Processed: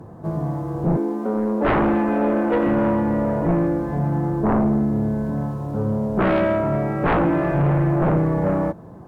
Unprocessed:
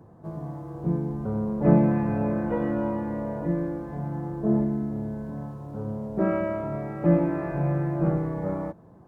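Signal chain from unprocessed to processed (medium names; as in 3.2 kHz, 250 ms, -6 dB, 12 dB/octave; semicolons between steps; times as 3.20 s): 0.97–2.67 s: steep high-pass 220 Hz 72 dB/octave; sine folder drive 13 dB, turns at -8.5 dBFS; trim -6 dB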